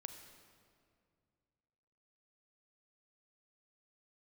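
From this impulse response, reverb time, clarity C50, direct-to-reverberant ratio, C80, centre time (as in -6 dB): 2.3 s, 7.5 dB, 6.5 dB, 8.5 dB, 33 ms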